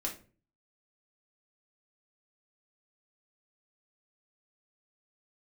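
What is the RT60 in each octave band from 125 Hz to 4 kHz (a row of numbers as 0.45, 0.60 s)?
0.60, 0.55, 0.45, 0.35, 0.30, 0.25 s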